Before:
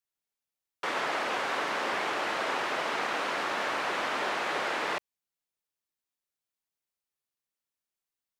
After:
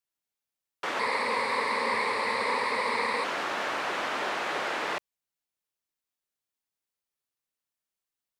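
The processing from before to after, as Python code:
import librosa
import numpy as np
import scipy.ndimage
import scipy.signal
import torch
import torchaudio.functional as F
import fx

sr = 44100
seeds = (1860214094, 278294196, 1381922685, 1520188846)

y = fx.ripple_eq(x, sr, per_octave=0.94, db=15, at=(0.99, 3.24))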